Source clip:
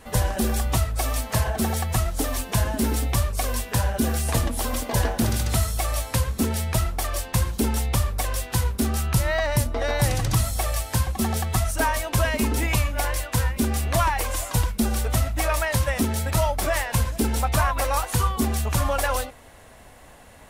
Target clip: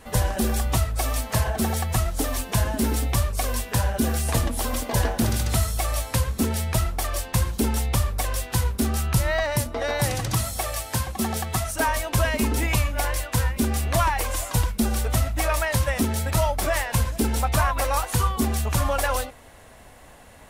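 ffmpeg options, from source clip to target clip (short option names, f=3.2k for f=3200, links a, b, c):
-filter_complex "[0:a]asettb=1/sr,asplit=3[a][b][c];[a]atrim=end=9.434[d];[b]atrim=start=9.43:end=11.88,asetpts=PTS-STARTPTS,afade=t=in:d=0.004:c=qsin,afade=t=out:st=2.446:d=0.004:c=qsin,highpass=f=120:p=1[e];[c]atrim=start=11.876[f];[d][e]acrossfade=d=0.004:c1=hsin:c2=qsin[g];[g][f]acrossfade=d=0.004:c1=qsin:c2=hsin"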